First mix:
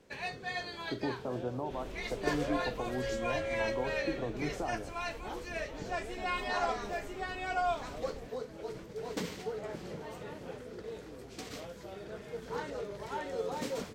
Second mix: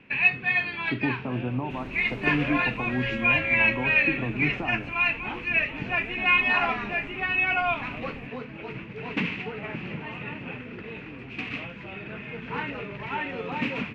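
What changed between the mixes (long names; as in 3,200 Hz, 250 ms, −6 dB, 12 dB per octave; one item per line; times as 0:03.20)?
first sound: add low-pass with resonance 2,600 Hz, resonance Q 9.4
master: add octave-band graphic EQ 125/250/500/1,000/2,000 Hz +10/+10/−5/+6/+6 dB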